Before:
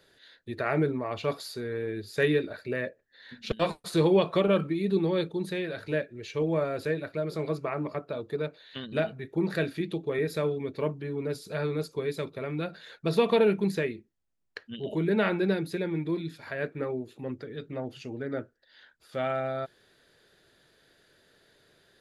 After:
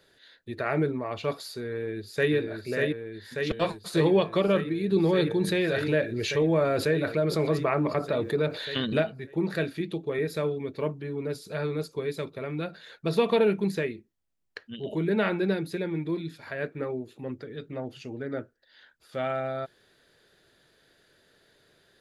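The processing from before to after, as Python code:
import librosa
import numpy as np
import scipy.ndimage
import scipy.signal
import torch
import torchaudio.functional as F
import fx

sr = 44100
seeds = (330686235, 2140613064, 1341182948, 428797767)

y = fx.echo_throw(x, sr, start_s=1.72, length_s=0.61, ms=590, feedback_pct=75, wet_db=-3.0)
y = fx.env_flatten(y, sr, amount_pct=50, at=(4.91, 9.01), fade=0.02)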